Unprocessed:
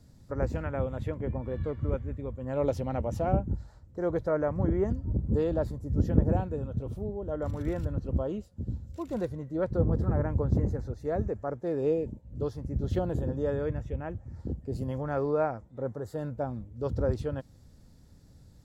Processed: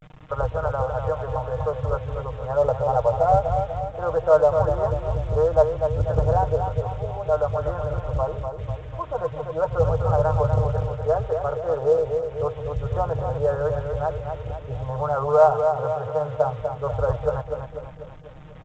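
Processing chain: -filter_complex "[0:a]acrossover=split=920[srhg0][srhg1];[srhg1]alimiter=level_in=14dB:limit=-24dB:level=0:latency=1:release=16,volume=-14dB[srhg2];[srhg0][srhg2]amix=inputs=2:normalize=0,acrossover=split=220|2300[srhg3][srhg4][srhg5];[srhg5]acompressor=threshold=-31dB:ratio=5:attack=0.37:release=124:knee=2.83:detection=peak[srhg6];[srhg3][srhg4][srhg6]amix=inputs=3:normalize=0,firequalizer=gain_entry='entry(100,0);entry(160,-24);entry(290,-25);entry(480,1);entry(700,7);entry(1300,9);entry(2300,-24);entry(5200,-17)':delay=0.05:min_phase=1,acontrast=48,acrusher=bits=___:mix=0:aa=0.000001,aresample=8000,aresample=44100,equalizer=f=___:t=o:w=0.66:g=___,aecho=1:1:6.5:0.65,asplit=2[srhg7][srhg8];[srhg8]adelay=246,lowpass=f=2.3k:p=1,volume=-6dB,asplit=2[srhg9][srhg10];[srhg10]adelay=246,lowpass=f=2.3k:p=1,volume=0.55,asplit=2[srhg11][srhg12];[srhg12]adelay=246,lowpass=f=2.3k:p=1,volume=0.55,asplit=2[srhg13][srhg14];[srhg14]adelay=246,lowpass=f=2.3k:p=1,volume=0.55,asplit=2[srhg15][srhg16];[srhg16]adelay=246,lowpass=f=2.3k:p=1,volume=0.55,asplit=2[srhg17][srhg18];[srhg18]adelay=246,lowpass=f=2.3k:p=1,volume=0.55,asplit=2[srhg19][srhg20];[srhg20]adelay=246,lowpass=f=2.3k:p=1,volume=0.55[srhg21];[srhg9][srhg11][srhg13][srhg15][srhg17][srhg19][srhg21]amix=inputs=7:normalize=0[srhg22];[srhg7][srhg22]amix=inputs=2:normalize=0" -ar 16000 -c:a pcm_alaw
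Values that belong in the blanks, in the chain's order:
7, 150, 9.5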